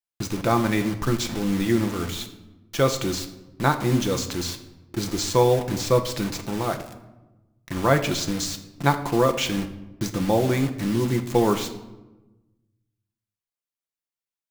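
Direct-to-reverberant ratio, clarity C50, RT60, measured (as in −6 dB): 5.0 dB, 11.5 dB, 1.1 s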